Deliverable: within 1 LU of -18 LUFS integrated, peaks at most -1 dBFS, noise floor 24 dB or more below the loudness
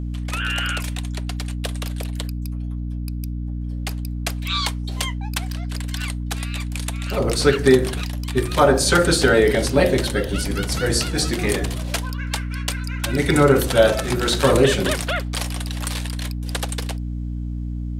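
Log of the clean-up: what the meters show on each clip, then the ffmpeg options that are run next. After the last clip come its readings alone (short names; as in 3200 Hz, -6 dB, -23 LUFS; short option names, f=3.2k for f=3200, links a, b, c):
hum 60 Hz; harmonics up to 300 Hz; hum level -24 dBFS; loudness -21.5 LUFS; peak -1.0 dBFS; loudness target -18.0 LUFS
-> -af "bandreject=f=60:t=h:w=6,bandreject=f=120:t=h:w=6,bandreject=f=180:t=h:w=6,bandreject=f=240:t=h:w=6,bandreject=f=300:t=h:w=6"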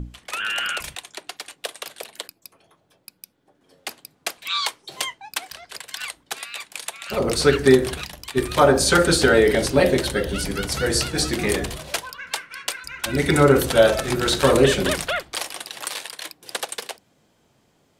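hum none; loudness -21.0 LUFS; peak -2.0 dBFS; loudness target -18.0 LUFS
-> -af "volume=3dB,alimiter=limit=-1dB:level=0:latency=1"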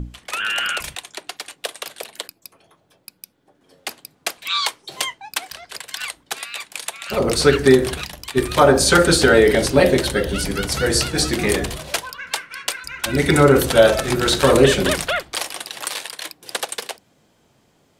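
loudness -18.5 LUFS; peak -1.0 dBFS; noise floor -61 dBFS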